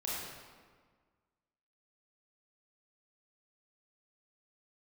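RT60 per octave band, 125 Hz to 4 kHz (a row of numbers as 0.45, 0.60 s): 1.8, 1.8, 1.6, 1.6, 1.4, 1.1 s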